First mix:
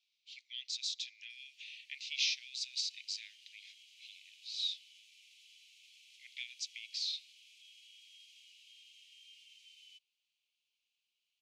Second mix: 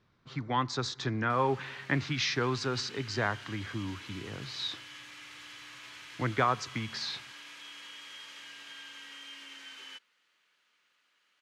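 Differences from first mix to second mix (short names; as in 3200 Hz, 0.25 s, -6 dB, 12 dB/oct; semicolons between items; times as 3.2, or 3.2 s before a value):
background +10.5 dB; master: remove steep high-pass 2400 Hz 72 dB/oct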